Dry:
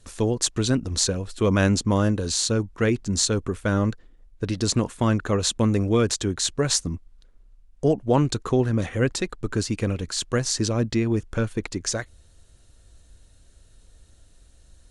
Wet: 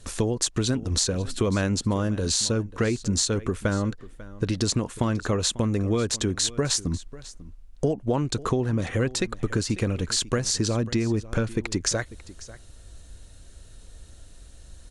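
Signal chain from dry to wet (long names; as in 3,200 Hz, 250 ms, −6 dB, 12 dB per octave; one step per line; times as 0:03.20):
downward compressor 6 to 1, threshold −28 dBFS, peak gain reduction 13 dB
on a send: single-tap delay 544 ms −18.5 dB
on the sum: level +6.5 dB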